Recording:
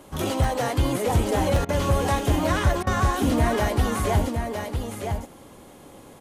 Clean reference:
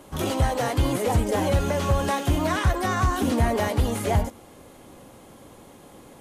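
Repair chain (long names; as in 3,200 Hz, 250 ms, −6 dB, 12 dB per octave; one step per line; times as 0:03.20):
repair the gap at 0:00.44/0:01.56, 3.2 ms
repair the gap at 0:01.65/0:02.83, 37 ms
echo removal 961 ms −6 dB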